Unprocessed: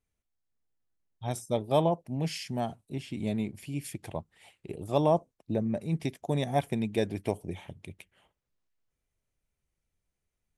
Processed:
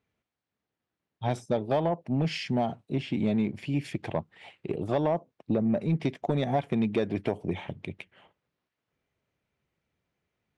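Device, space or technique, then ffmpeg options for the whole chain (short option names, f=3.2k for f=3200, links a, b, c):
AM radio: -af "highpass=120,lowpass=3.3k,acompressor=threshold=-29dB:ratio=10,asoftclip=type=tanh:threshold=-25.5dB,volume=9dB"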